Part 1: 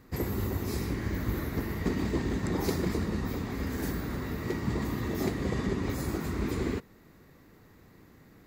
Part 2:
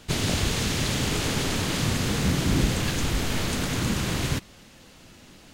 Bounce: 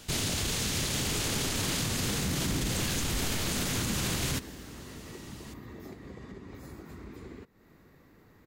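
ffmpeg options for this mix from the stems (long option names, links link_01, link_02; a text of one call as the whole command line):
ffmpeg -i stem1.wav -i stem2.wav -filter_complex "[0:a]bass=frequency=250:gain=-1,treble=frequency=4000:gain=-3,acompressor=threshold=-42dB:ratio=5,adelay=650,volume=-1.5dB[link_01];[1:a]highshelf=frequency=4700:gain=9,alimiter=limit=-19dB:level=0:latency=1:release=38,volume=-2.5dB[link_02];[link_01][link_02]amix=inputs=2:normalize=0" out.wav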